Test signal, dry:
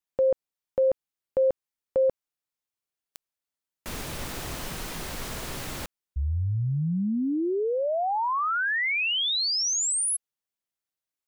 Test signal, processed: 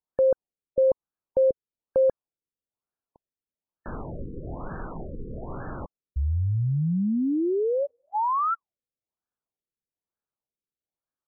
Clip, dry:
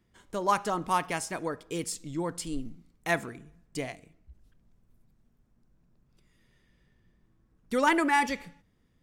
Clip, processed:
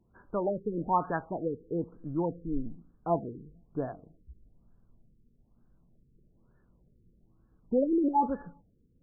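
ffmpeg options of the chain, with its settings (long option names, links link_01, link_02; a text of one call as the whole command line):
ffmpeg -i in.wav -af "afftfilt=real='re*lt(b*sr/1024,500*pow(1800/500,0.5+0.5*sin(2*PI*1.1*pts/sr)))':imag='im*lt(b*sr/1024,500*pow(1800/500,0.5+0.5*sin(2*PI*1.1*pts/sr)))':win_size=1024:overlap=0.75,volume=2dB" out.wav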